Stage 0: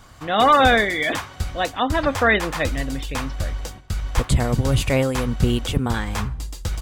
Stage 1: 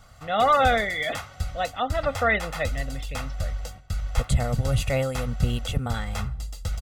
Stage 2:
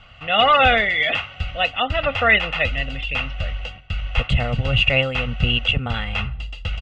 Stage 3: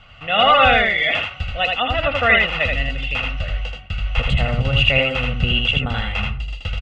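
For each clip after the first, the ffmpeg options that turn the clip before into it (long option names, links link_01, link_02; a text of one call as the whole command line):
ffmpeg -i in.wav -af "aecho=1:1:1.5:0.69,volume=-7dB" out.wav
ffmpeg -i in.wav -af "lowpass=frequency=2800:width_type=q:width=10,volume=2.5dB" out.wav
ffmpeg -i in.wav -af "aecho=1:1:80:0.668" out.wav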